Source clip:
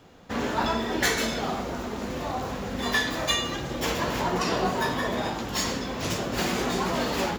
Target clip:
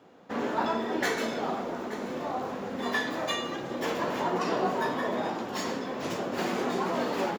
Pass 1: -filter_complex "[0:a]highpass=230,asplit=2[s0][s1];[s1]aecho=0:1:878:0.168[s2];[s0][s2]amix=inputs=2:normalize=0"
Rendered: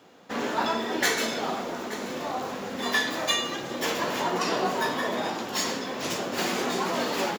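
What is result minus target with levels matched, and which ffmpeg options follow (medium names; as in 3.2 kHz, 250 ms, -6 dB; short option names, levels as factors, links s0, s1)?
4 kHz band +5.5 dB
-filter_complex "[0:a]highpass=230,highshelf=f=2200:g=-11.5,asplit=2[s0][s1];[s1]aecho=0:1:878:0.168[s2];[s0][s2]amix=inputs=2:normalize=0"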